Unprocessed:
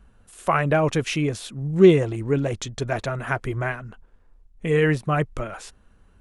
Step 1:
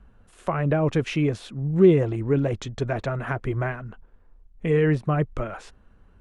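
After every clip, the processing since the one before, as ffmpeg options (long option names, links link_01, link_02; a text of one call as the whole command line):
ffmpeg -i in.wav -filter_complex "[0:a]aemphasis=mode=reproduction:type=75kf,asplit=2[link_01][link_02];[link_02]alimiter=limit=-14dB:level=0:latency=1,volume=-3dB[link_03];[link_01][link_03]amix=inputs=2:normalize=0,acrossover=split=500[link_04][link_05];[link_05]acompressor=threshold=-23dB:ratio=6[link_06];[link_04][link_06]amix=inputs=2:normalize=0,volume=-3.5dB" out.wav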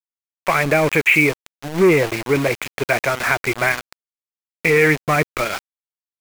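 ffmpeg -i in.wav -filter_complex "[0:a]asplit=2[link_01][link_02];[link_02]highpass=frequency=720:poles=1,volume=18dB,asoftclip=type=tanh:threshold=-5.5dB[link_03];[link_01][link_03]amix=inputs=2:normalize=0,lowpass=frequency=1800:poles=1,volume=-6dB,lowpass=frequency=2300:width_type=q:width=8.1,aeval=exprs='val(0)*gte(abs(val(0)),0.0794)':channel_layout=same" out.wav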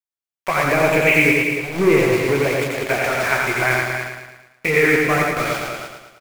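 ffmpeg -i in.wav -filter_complex "[0:a]asplit=2[link_01][link_02];[link_02]aecho=0:1:87.46|285.7:0.708|0.447[link_03];[link_01][link_03]amix=inputs=2:normalize=0,flanger=delay=7.8:depth=9.2:regen=-49:speed=1.9:shape=sinusoidal,asplit=2[link_04][link_05];[link_05]aecho=0:1:111|222|333|444|555|666:0.501|0.261|0.136|0.0705|0.0366|0.0191[link_06];[link_04][link_06]amix=inputs=2:normalize=0,volume=1dB" out.wav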